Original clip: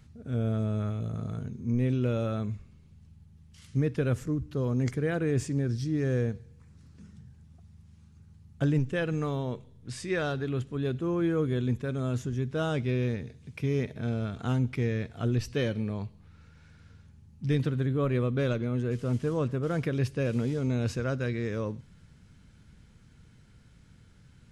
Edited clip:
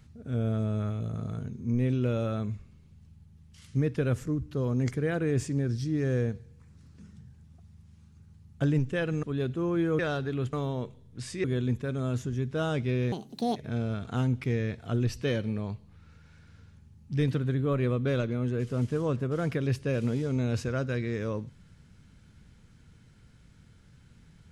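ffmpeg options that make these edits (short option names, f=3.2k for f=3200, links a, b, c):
-filter_complex "[0:a]asplit=7[a][b][c][d][e][f][g];[a]atrim=end=9.232[h];[b]atrim=start=10.678:end=11.442[i];[c]atrim=start=10.138:end=10.682[j];[d]atrim=start=9.228:end=10.142[k];[e]atrim=start=11.438:end=13.124[l];[f]atrim=start=13.12:end=13.88,asetpts=PTS-STARTPTS,asetrate=75411,aresample=44100[m];[g]atrim=start=13.876[n];[h][i]acrossfade=d=0.004:c1=hsin:c2=hsin[o];[o][j]acrossfade=d=0.004:c1=hsin:c2=hsin[p];[p][k]acrossfade=d=0.004:c1=hsin:c2=hsin[q];[q][l]acrossfade=d=0.004:c1=hsin:c2=hsin[r];[r][m]acrossfade=d=0.004:c1=hsin:c2=hsin[s];[s][n]acrossfade=d=0.004:c1=hsin:c2=hsin"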